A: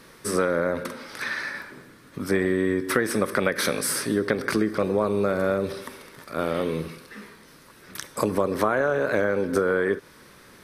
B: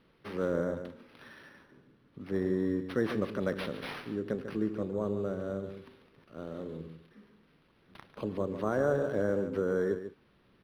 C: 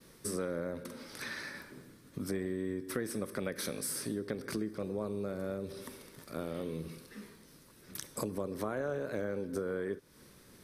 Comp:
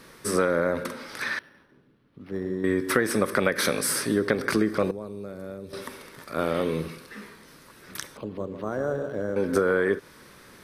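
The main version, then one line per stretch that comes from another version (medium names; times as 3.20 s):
A
1.39–2.64 s: from B
4.91–5.73 s: from C
8.17–9.36 s: from B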